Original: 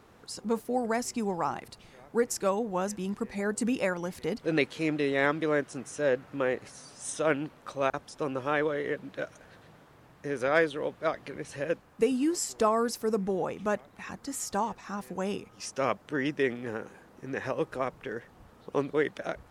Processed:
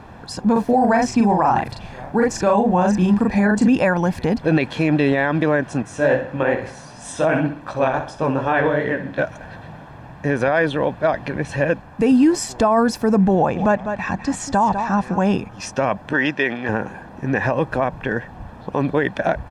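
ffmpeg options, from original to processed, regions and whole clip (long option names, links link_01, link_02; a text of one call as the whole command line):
ffmpeg -i in.wav -filter_complex "[0:a]asettb=1/sr,asplit=3[link_01][link_02][link_03];[link_01]atrim=end=0.524[link_04];[link_02]atrim=start=0.52:end=3.68,asetpts=PTS-STARTPTS,afade=type=in:duration=0.004:curve=qsin,afade=type=out:start_time=3.156:duration=0.004:curve=qsin,acrossover=split=7600[link_05][link_06];[link_06]acompressor=threshold=-57dB:ratio=4:attack=1:release=60[link_07];[link_05][link_07]amix=inputs=2:normalize=0,asplit=2[link_08][link_09];[link_09]adelay=39,volume=-2.5dB[link_10];[link_08][link_10]amix=inputs=2:normalize=0,atrim=end_sample=139356[link_11];[link_03]atrim=start=3.676[link_12];[link_04][link_11]acrossfade=duration=0.004:curve1=hsin:curve2=qsin[link_13];[link_13][link_12]acrossfade=duration=0.004:curve1=qsin:curve2=hsin,asettb=1/sr,asplit=3[link_14][link_15][link_16];[link_14]atrim=end=5.824[link_17];[link_15]atrim=start=5.82:end=9.18,asetpts=PTS-STARTPTS,afade=type=in:duration=0.004:curve=qsin,afade=type=out:start_time=3.356:duration=0.004:curve=qsin,flanger=delay=16:depth=7.6:speed=2.6,aecho=1:1:63|126|189|252:0.282|0.118|0.0497|0.0209,atrim=end_sample=148176[link_18];[link_16]atrim=start=9.176[link_19];[link_17][link_18]acrossfade=duration=0.004:curve1=hsin:curve2=qsin[link_20];[link_20][link_19]acrossfade=duration=0.004:curve1=qsin:curve2=hsin,asettb=1/sr,asplit=3[link_21][link_22][link_23];[link_21]atrim=end=13.354[link_24];[link_22]atrim=start=13.35:end=15.32,asetpts=PTS-STARTPTS,afade=type=in:duration=0.004:curve=qsin,afade=type=out:start_time=1.966:duration=0.004:curve=qsin,lowpass=frequency=9000:width=0.5412,lowpass=frequency=9000:width=1.3066,aecho=1:1:199:0.237,atrim=end_sample=86877[link_25];[link_23]atrim=start=15.316[link_26];[link_24][link_25]acrossfade=duration=0.004:curve1=hsin:curve2=qsin[link_27];[link_27][link_26]acrossfade=duration=0.004:curve1=qsin:curve2=hsin,asettb=1/sr,asplit=3[link_28][link_29][link_30];[link_28]atrim=end=16.134[link_31];[link_29]atrim=start=16.13:end=16.69,asetpts=PTS-STARTPTS,afade=type=in:duration=0.004:curve=qsin,afade=type=out:start_time=0.556:duration=0.004:curve=qsin,lowpass=3600,aemphasis=mode=production:type=riaa[link_32];[link_30]atrim=start=16.686[link_33];[link_31][link_32]acrossfade=duration=0.004:curve1=hsin:curve2=qsin[link_34];[link_34][link_33]acrossfade=duration=0.004:curve1=qsin:curve2=hsin,lowpass=frequency=1600:poles=1,aecho=1:1:1.2:0.52,alimiter=level_in=24dB:limit=-1dB:release=50:level=0:latency=1,volume=-7dB" out.wav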